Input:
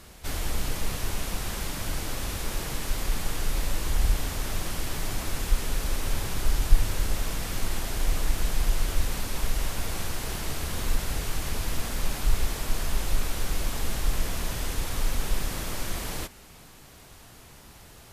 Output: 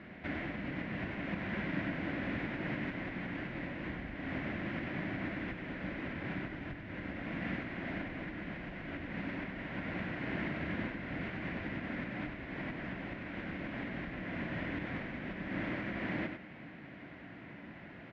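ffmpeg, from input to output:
-af "acompressor=threshold=-30dB:ratio=4,highpass=160,equalizer=f=190:t=q:w=4:g=5,equalizer=f=290:t=q:w=4:g=6,equalizer=f=440:t=q:w=4:g=-9,equalizer=f=860:t=q:w=4:g=-8,equalizer=f=1.2k:t=q:w=4:g=-10,equalizer=f=2k:t=q:w=4:g=5,lowpass=f=2.2k:w=0.5412,lowpass=f=2.2k:w=1.3066,aecho=1:1:96:0.473,volume=4dB"

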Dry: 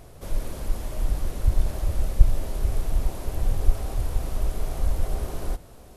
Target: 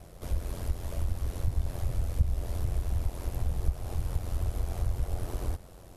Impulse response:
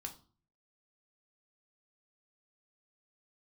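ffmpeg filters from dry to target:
-af "aeval=exprs='val(0)*sin(2*PI*44*n/s)':c=same,acompressor=threshold=-27dB:ratio=2"

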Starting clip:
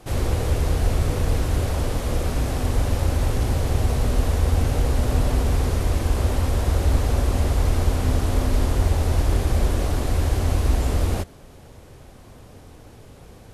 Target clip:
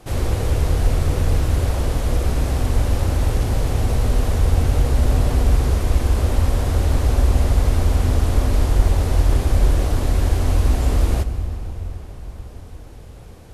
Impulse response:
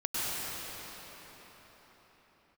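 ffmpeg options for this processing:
-filter_complex "[0:a]asplit=2[a][b];[1:a]atrim=start_sample=2205,lowshelf=f=130:g=11[c];[b][c]afir=irnorm=-1:irlink=0,volume=-19.5dB[d];[a][d]amix=inputs=2:normalize=0"

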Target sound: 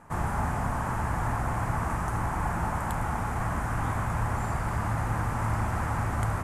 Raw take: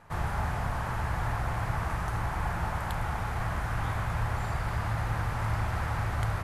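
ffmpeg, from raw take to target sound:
-af "equalizer=f=250:t=o:w=1:g=9,equalizer=f=1k:t=o:w=1:g=4,equalizer=f=4k:t=o:w=1:g=-8,equalizer=f=8k:t=o:w=1:g=8"

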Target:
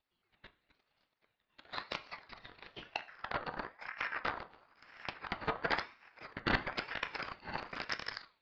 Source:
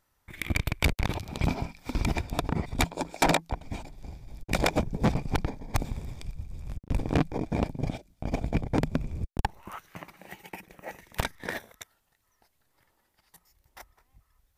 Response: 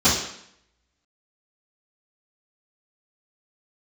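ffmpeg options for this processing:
-filter_complex "[0:a]areverse,highpass=f=290:t=q:w=0.5412,highpass=f=290:t=q:w=1.307,lowpass=f=2.3k:t=q:w=0.5176,lowpass=f=2.3k:t=q:w=0.7071,lowpass=f=2.3k:t=q:w=1.932,afreqshift=-280,asplit=2[a][b];[1:a]atrim=start_sample=2205,lowpass=2.6k[c];[b][c]afir=irnorm=-1:irlink=0,volume=-28.5dB[d];[a][d]amix=inputs=2:normalize=0,asetrate=76440,aresample=44100,aeval=exprs='val(0)*sin(2*PI*1300*n/s+1300*0.35/1*sin(2*PI*1*n/s))':c=same,volume=-3.5dB"

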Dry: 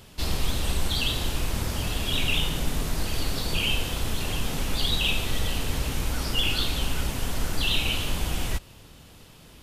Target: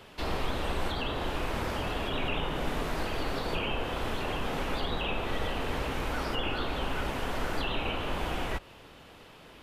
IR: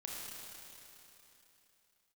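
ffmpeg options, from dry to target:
-filter_complex "[0:a]bass=f=250:g=-12,treble=f=4k:g=-15,acrossover=split=170|1800[a][b][c];[c]acompressor=threshold=-45dB:ratio=6[d];[a][b][d]amix=inputs=3:normalize=0,volume=4dB"

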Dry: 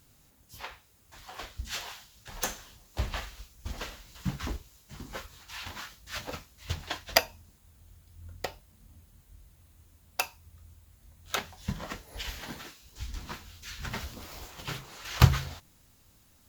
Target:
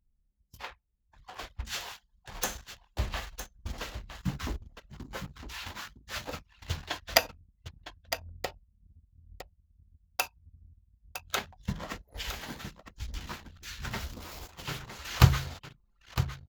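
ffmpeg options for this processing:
-af "aecho=1:1:959:0.299,anlmdn=0.0251"

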